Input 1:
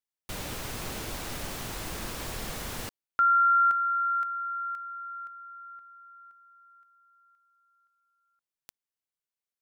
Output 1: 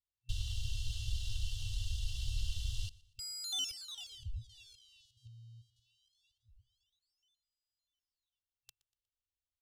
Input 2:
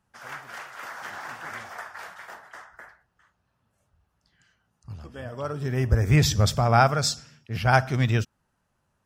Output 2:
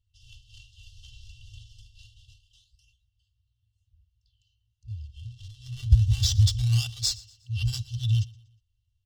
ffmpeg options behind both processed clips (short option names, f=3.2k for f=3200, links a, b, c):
-filter_complex "[0:a]asplit=2[a][b];[b]acrusher=samples=33:mix=1:aa=0.000001:lfo=1:lforange=52.8:lforate=0.23,volume=-7dB[c];[a][c]amix=inputs=2:normalize=0,afftfilt=real='re*(1-between(b*sr/4096,120,2700))':imag='im*(1-between(b*sr/4096,120,2700))':win_size=4096:overlap=0.75,adynamicsmooth=sensitivity=5:basefreq=4.2k,aecho=1:1:2.6:0.76,asplit=2[d][e];[e]aecho=0:1:120|240|360:0.0794|0.031|0.0121[f];[d][f]amix=inputs=2:normalize=0,volume=-1.5dB"